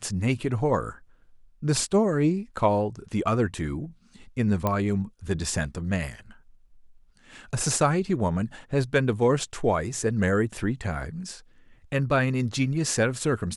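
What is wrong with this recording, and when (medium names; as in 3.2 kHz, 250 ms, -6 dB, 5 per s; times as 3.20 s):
4.67 s: pop -12 dBFS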